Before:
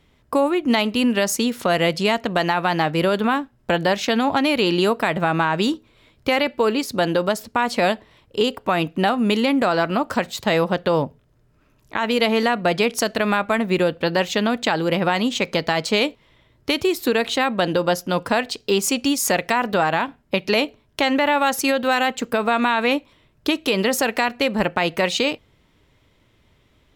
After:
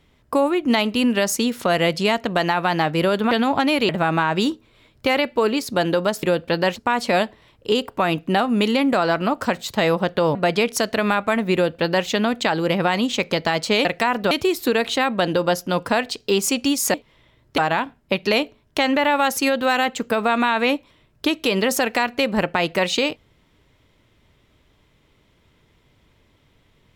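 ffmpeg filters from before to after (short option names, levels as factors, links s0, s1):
-filter_complex "[0:a]asplit=10[s0][s1][s2][s3][s4][s5][s6][s7][s8][s9];[s0]atrim=end=3.312[s10];[s1]atrim=start=4.078:end=4.662[s11];[s2]atrim=start=5.108:end=7.452[s12];[s3]atrim=start=13.758:end=14.292[s13];[s4]atrim=start=7.448:end=11.042[s14];[s5]atrim=start=12.568:end=16.072[s15];[s6]atrim=start=19.338:end=19.802[s16];[s7]atrim=start=16.708:end=19.342[s17];[s8]atrim=start=16.068:end=16.712[s18];[s9]atrim=start=19.798[s19];[s10][s11]acrossfade=d=0.004:c1=hsin:c2=hsin[s20];[s20][s12]acrossfade=d=0.004:c1=hsin:c2=hsin[s21];[s21][s13]acrossfade=d=0.004:c1=hsin:c2=hsin[s22];[s22][s14]acrossfade=d=0.004:c1=hsin:c2=hsin[s23];[s23][s15]acrossfade=d=0.004:c1=hsin:c2=hsin[s24];[s24][s16]acrossfade=d=0.004:c1=hsin:c2=hsin[s25];[s25][s17]acrossfade=d=0.004:c1=hsin:c2=hsin[s26];[s26][s18]acrossfade=d=0.004:c1=hsin:c2=hsin[s27];[s27][s19]acrossfade=d=0.004:c1=hsin:c2=hsin"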